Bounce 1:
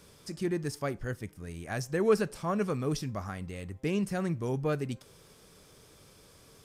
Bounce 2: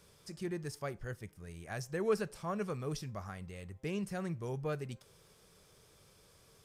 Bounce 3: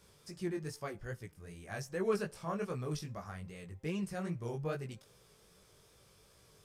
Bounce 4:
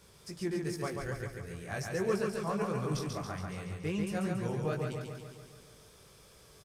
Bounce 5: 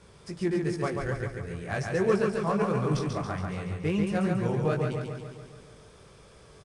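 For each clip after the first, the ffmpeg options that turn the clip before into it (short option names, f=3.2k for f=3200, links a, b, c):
-af "equalizer=f=270:t=o:w=0.42:g=-8,volume=-6dB"
-af "flanger=delay=15.5:depth=5.2:speed=2.5,volume=2.5dB"
-filter_complex "[0:a]asplit=2[a][b];[b]alimiter=level_in=6dB:limit=-24dB:level=0:latency=1:release=431,volume=-6dB,volume=2dB[c];[a][c]amix=inputs=2:normalize=0,aecho=1:1:140|280|420|560|700|840|980|1120:0.631|0.372|0.22|0.13|0.0765|0.0451|0.0266|0.0157,volume=-3dB"
-filter_complex "[0:a]asplit=2[a][b];[b]adynamicsmooth=sensitivity=8:basefreq=3.4k,volume=1.5dB[c];[a][c]amix=inputs=2:normalize=0" -ar 22050 -c:a adpcm_ima_wav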